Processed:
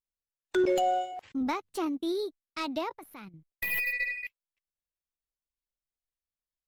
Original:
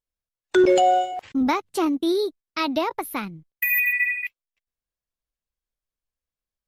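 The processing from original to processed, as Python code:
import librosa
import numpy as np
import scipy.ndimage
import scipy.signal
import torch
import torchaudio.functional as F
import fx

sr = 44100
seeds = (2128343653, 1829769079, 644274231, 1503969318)

y = fx.tracing_dist(x, sr, depth_ms=0.035)
y = fx.level_steps(y, sr, step_db=12, at=(2.93, 3.34))
y = y * librosa.db_to_amplitude(-9.0)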